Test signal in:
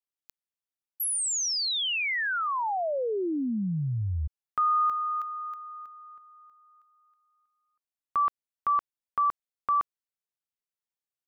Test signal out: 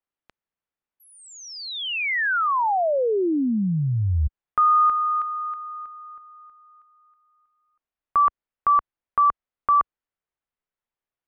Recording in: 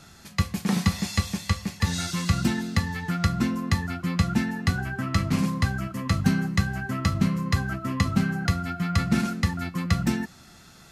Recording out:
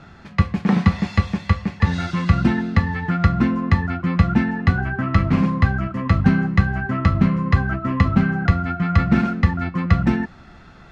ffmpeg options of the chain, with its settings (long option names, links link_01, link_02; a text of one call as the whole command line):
ffmpeg -i in.wav -af "asubboost=boost=2:cutoff=70,lowpass=2100,volume=7.5dB" out.wav